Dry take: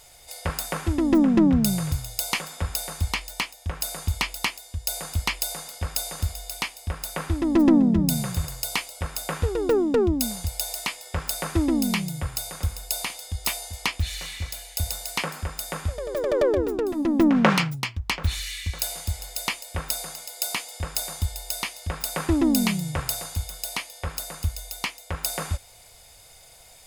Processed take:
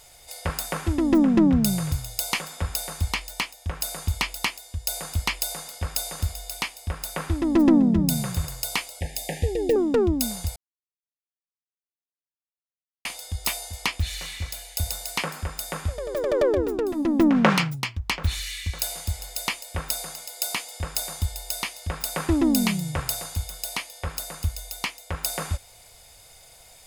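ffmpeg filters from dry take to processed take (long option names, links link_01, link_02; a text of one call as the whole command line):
ffmpeg -i in.wav -filter_complex "[0:a]asettb=1/sr,asplit=3[link_01][link_02][link_03];[link_01]atrim=end=9.004[link_04];[link_02]atrim=start=9:end=9.76,asetpts=PTS-STARTPTS,afade=type=in:duration=0.004:curve=qsin,afade=type=out:start_time=0.756:duration=0.004:curve=qsin,asuperstop=centerf=1200:order=20:qfactor=1.5[link_05];[link_03]atrim=start=9.756[link_06];[link_04][link_05]acrossfade=duration=0.004:curve1=hsin:curve2=qsin[link_07];[link_07][link_06]acrossfade=duration=0.004:curve1=qsin:curve2=hsin,asplit=3[link_08][link_09][link_10];[link_08]atrim=end=10.56,asetpts=PTS-STARTPTS,afade=type=out:start_time=10.556:duration=0.004:curve=hsin[link_11];[link_09]atrim=start=10.56:end=13.05,asetpts=PTS-STARTPTS,volume=0[link_12];[link_10]atrim=start=13.05,asetpts=PTS-STARTPTS,afade=type=in:duration=0.004:curve=hsin[link_13];[link_11][link_12][link_13]concat=n=3:v=0:a=1" out.wav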